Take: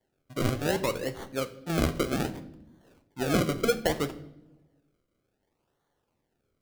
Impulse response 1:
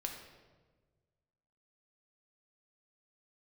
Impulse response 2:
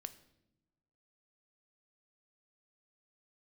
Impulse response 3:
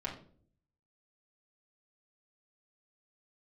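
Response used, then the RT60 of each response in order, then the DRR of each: 2; 1.4 s, no single decay rate, 0.50 s; 1.5 dB, 10.5 dB, -5.5 dB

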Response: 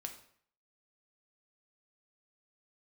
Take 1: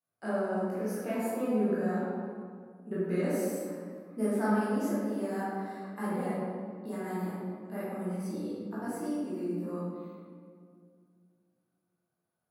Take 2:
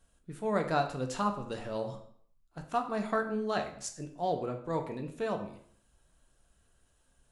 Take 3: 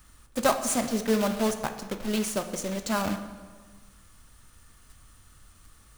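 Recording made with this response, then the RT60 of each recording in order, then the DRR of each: 2; 2.1 s, 0.60 s, 1.5 s; -10.5 dB, 4.0 dB, 7.5 dB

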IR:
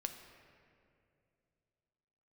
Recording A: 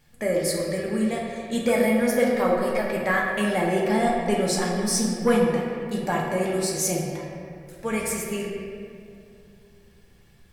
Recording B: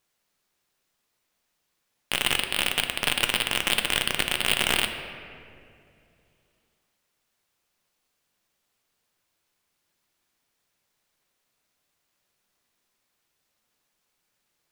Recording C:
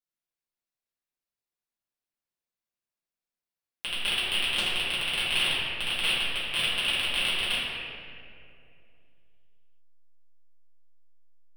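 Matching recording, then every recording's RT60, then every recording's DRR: B; 2.5 s, 2.5 s, 2.5 s; -3.0 dB, 5.5 dB, -11.0 dB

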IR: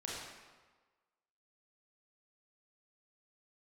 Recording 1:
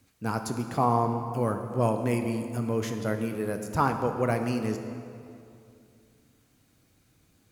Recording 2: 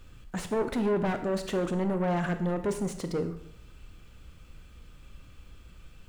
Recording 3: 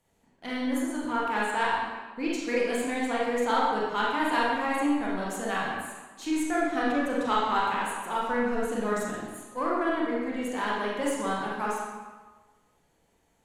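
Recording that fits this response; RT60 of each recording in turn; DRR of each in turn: 3; 2.6 s, 0.70 s, 1.4 s; 5.5 dB, 8.0 dB, -5.5 dB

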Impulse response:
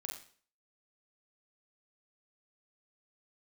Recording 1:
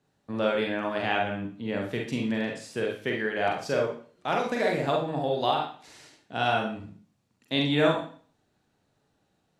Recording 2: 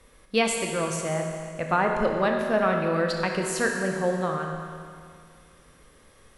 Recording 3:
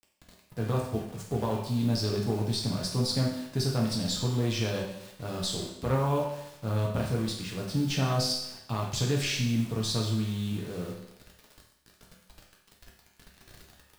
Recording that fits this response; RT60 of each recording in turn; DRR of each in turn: 1; 0.45 s, 2.2 s, 0.80 s; -0.5 dB, 2.0 dB, -2.5 dB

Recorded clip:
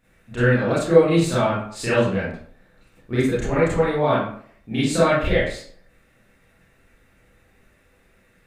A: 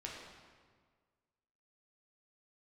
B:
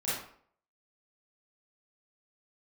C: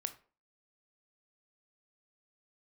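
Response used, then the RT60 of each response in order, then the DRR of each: B; 1.7 s, 0.55 s, 0.40 s; -3.5 dB, -11.0 dB, 9.0 dB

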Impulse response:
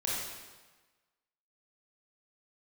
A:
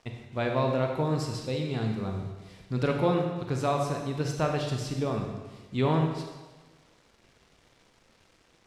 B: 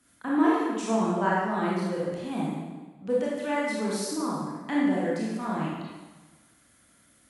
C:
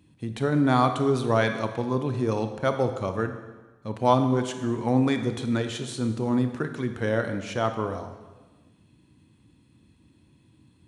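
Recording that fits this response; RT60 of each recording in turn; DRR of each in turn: B; 1.3 s, 1.3 s, 1.3 s; 2.0 dB, -6.0 dB, 7.5 dB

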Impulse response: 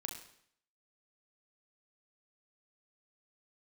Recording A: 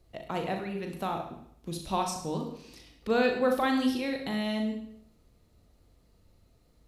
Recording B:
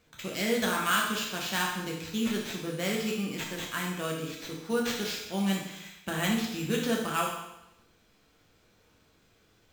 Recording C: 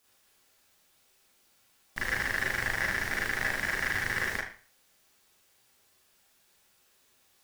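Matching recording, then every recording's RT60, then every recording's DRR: A; 0.65 s, 0.90 s, 0.40 s; 2.5 dB, -3.0 dB, -5.5 dB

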